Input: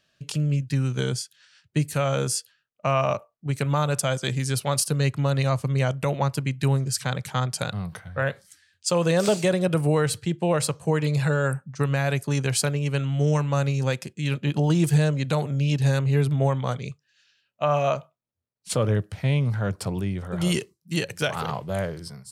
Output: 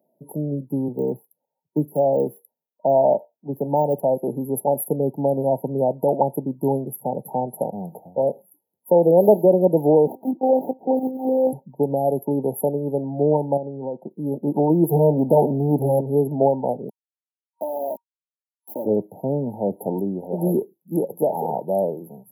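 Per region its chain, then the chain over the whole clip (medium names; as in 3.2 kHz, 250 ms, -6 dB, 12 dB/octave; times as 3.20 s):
0.88–4.03 s: de-esser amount 90% + three bands expanded up and down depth 40%
10.07–11.53 s: tilt shelf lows -6 dB, about 890 Hz + monotone LPC vocoder at 8 kHz 260 Hz + sliding maximum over 9 samples
13.57–14.11 s: companding laws mixed up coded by A + low-pass 2.6 kHz + compression 5:1, threshold -27 dBFS
14.89–16.01 s: peaking EQ 3.4 kHz -5.5 dB 1.7 oct + waveshaping leveller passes 2
16.89–18.86 s: comb 3.3 ms, depth 79% + compression 4:1, threshold -33 dBFS + small samples zeroed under -34.5 dBFS
whole clip: FFT band-reject 940–11000 Hz; high-pass 220 Hz 24 dB/octave; trim +8.5 dB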